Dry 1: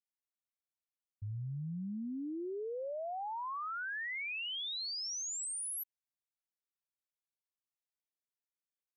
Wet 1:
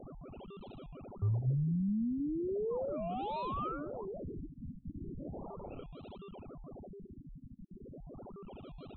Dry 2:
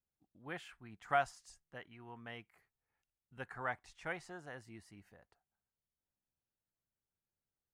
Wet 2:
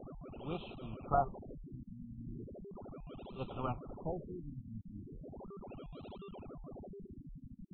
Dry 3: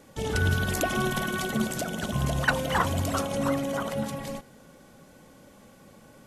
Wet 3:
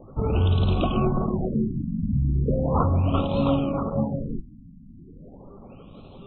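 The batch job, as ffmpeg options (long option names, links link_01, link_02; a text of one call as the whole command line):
ffmpeg -i in.wav -filter_complex "[0:a]acrossover=split=6400[link_01][link_02];[link_02]acompressor=threshold=-47dB:ratio=4:attack=1:release=60[link_03];[link_01][link_03]amix=inputs=2:normalize=0,lowshelf=frequency=95:gain=11.5,bandreject=frequency=60:width_type=h:width=6,bandreject=frequency=120:width_type=h:width=6,acrossover=split=400[link_04][link_05];[link_04]alimiter=limit=-21dB:level=0:latency=1:release=39[link_06];[link_06][link_05]amix=inputs=2:normalize=0,acrusher=bits=8:mix=0:aa=0.000001,aeval=exprs='val(0)+0.00708*sin(2*PI*5900*n/s)':channel_layout=same,asplit=2[link_07][link_08];[link_08]acrusher=samples=40:mix=1:aa=0.000001:lfo=1:lforange=24:lforate=1.4,volume=-3.5dB[link_09];[link_07][link_09]amix=inputs=2:normalize=0,asuperstop=centerf=1800:order=12:qfactor=1.7,afftfilt=real='re*lt(b*sr/1024,270*pow(4200/270,0.5+0.5*sin(2*PI*0.37*pts/sr)))':imag='im*lt(b*sr/1024,270*pow(4200/270,0.5+0.5*sin(2*PI*0.37*pts/sr)))':win_size=1024:overlap=0.75,volume=1dB" out.wav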